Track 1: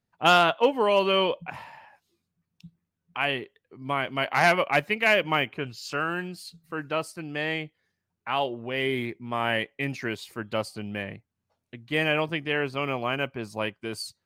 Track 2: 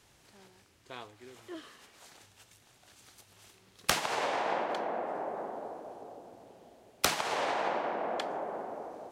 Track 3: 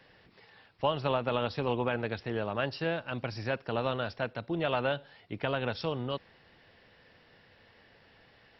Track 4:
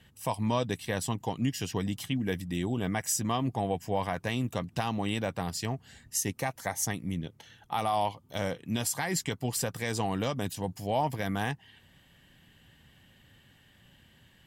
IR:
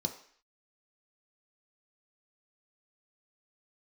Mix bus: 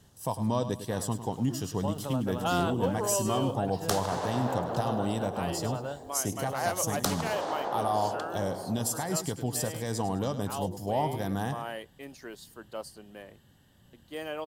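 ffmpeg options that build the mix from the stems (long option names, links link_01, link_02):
-filter_complex "[0:a]highpass=330,highshelf=frequency=5900:gain=7.5,adelay=2200,volume=-8dB[link_01];[1:a]volume=0dB[link_02];[2:a]acrusher=bits=9:mix=0:aa=0.000001,adelay=1000,volume=-6dB[link_03];[3:a]volume=0.5dB,asplit=2[link_04][link_05];[link_05]volume=-11.5dB,aecho=0:1:103|206|309|412|515:1|0.35|0.122|0.0429|0.015[link_06];[link_01][link_02][link_03][link_04][link_06]amix=inputs=5:normalize=0,equalizer=frequency=2300:width=1.6:gain=-15"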